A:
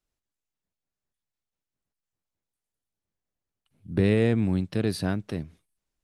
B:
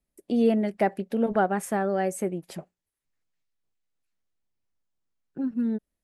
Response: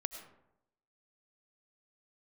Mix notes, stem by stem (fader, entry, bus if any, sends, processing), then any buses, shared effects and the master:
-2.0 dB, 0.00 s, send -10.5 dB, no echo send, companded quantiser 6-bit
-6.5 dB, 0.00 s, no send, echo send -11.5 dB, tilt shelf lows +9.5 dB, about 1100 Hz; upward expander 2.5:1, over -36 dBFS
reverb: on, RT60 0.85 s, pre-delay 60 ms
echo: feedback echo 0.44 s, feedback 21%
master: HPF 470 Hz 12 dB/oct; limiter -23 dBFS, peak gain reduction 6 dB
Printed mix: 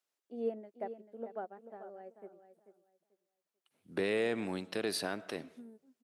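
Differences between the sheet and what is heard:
stem A: missing companded quantiser 6-bit; stem B -6.5 dB -> -13.5 dB

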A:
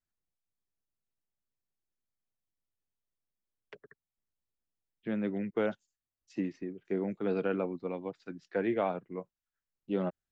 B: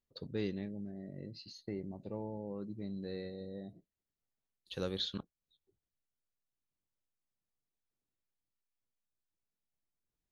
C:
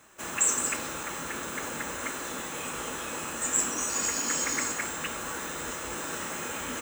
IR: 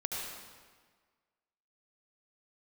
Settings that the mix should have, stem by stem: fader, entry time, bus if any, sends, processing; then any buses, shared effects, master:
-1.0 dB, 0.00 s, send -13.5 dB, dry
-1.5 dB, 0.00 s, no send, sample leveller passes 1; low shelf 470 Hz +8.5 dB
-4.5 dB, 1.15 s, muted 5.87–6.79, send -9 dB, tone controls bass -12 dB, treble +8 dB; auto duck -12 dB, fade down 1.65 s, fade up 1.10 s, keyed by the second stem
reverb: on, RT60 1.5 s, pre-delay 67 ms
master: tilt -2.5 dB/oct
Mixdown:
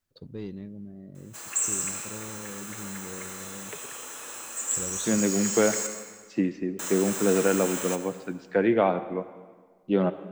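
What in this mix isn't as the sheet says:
stem A -1.0 dB -> +7.0 dB; stem B -1.5 dB -> -9.0 dB; master: missing tilt -2.5 dB/oct

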